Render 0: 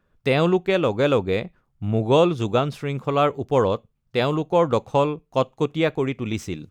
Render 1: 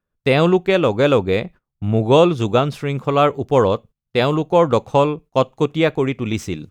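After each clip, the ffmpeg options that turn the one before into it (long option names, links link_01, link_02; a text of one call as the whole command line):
ffmpeg -i in.wav -af "agate=range=-18dB:threshold=-42dB:ratio=16:detection=peak,volume=4.5dB" out.wav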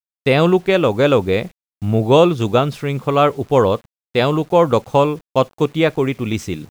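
ffmpeg -i in.wav -af "acrusher=bits=7:mix=0:aa=0.000001,volume=1dB" out.wav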